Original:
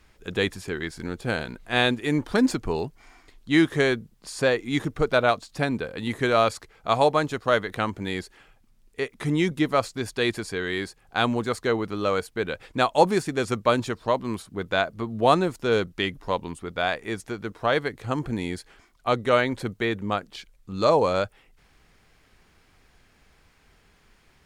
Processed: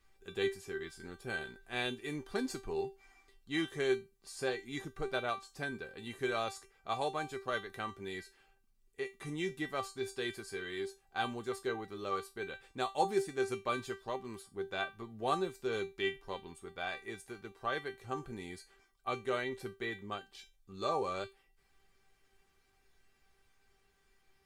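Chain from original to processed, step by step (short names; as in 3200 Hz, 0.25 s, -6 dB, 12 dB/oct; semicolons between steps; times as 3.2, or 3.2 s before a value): high shelf 7200 Hz +5 dB; resonator 390 Hz, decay 0.24 s, harmonics all, mix 90%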